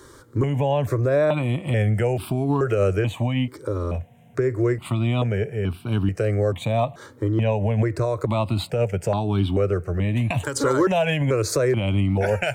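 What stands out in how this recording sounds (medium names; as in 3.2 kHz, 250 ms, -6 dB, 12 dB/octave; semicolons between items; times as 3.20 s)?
notches that jump at a steady rate 2.3 Hz 710–1900 Hz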